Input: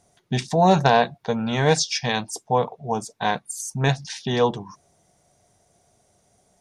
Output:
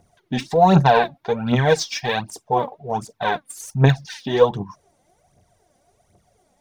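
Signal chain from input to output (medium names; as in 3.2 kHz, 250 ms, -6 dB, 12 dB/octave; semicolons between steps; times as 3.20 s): phaser 1.3 Hz, delay 4 ms, feedback 67%; peaking EQ 7.4 kHz -8 dB 1.7 oct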